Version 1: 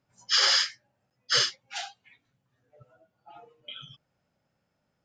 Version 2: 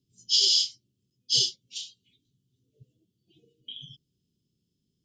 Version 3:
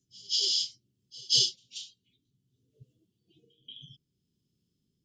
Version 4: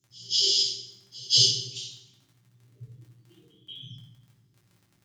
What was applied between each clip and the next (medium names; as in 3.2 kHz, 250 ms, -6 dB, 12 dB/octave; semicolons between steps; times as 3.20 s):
Chebyshev band-stop 400–3100 Hz, order 4; trim +2 dB
rotary cabinet horn 0.6 Hz; pre-echo 183 ms -23.5 dB
crackle 19 per s -47 dBFS; reverberation RT60 1.0 s, pre-delay 4 ms, DRR -5 dB